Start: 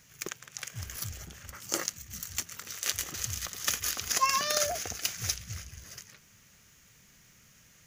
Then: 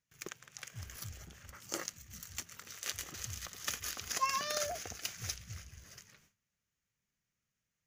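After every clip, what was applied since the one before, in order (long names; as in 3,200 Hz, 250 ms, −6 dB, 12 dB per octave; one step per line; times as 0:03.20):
high-shelf EQ 5,100 Hz −4.5 dB
noise gate with hold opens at −48 dBFS
level −6 dB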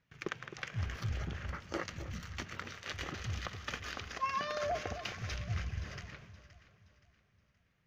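reversed playback
downward compressor 6 to 1, threshold −45 dBFS, peak gain reduction 16.5 dB
reversed playback
high-frequency loss of the air 270 metres
delay that swaps between a low-pass and a high-pass 261 ms, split 1,100 Hz, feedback 60%, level −11 dB
level +14 dB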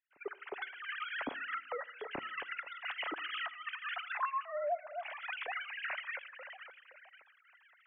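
three sine waves on the formant tracks
camcorder AGC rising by 40 dB per second
convolution reverb RT60 0.90 s, pre-delay 7 ms, DRR 19 dB
level −7 dB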